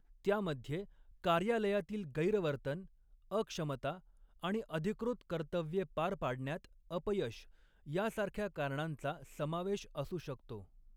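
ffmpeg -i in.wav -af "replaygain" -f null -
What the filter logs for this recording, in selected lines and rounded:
track_gain = +17.7 dB
track_peak = 0.083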